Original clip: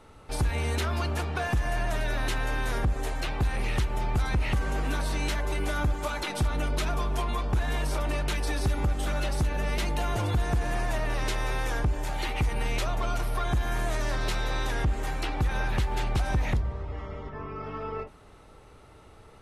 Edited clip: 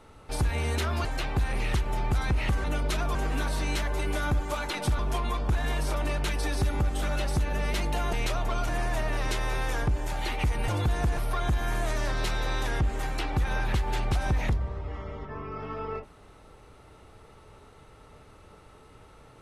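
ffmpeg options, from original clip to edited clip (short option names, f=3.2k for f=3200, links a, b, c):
-filter_complex "[0:a]asplit=9[a][b][c][d][e][f][g][h][i];[a]atrim=end=1.052[j];[b]atrim=start=3.088:end=4.682[k];[c]atrim=start=6.518:end=7.032[l];[d]atrim=start=4.678:end=6.522[m];[e]atrim=start=7.028:end=10.172[n];[f]atrim=start=12.648:end=13.212[o];[g]atrim=start=10.658:end=12.652[p];[h]atrim=start=10.168:end=10.662[q];[i]atrim=start=13.208[r];[j][k]acrossfade=d=0.004:c1=hsin:c2=hsin[s];[s][l]acrossfade=d=0.004:c1=hsin:c2=hsin[t];[t][m]acrossfade=d=0.004:c1=hsin:c2=hsin[u];[u][n]acrossfade=d=0.004:c1=hsin:c2=hsin[v];[v][o]acrossfade=d=0.004:c1=hsin:c2=hsin[w];[w][p]acrossfade=d=0.004:c1=hsin:c2=hsin[x];[x][q]acrossfade=d=0.004:c1=hsin:c2=hsin[y];[y][r]acrossfade=d=0.004:c1=hsin:c2=hsin"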